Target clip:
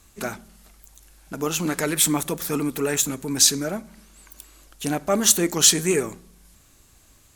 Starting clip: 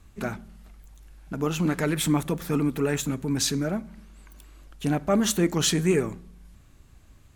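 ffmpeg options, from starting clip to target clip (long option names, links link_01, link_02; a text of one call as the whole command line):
ffmpeg -i in.wav -af "bass=frequency=250:gain=-8,treble=frequency=4000:gain=10,volume=2.5dB" out.wav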